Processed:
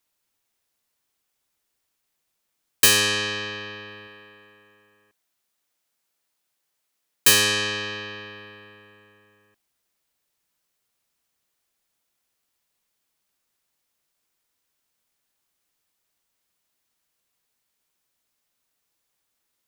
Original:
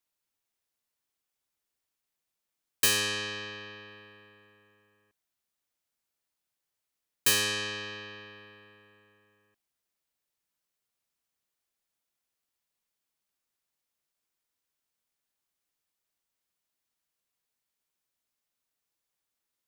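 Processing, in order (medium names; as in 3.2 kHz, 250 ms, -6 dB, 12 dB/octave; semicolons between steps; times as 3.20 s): 4.07–7.28 s: bass shelf 130 Hz -9.5 dB; trim +8.5 dB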